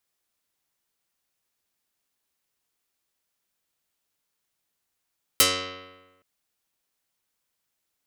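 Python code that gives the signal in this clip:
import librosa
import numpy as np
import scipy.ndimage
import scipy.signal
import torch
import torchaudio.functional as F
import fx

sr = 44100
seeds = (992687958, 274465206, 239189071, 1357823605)

y = fx.pluck(sr, length_s=0.82, note=42, decay_s=1.2, pick=0.11, brightness='dark')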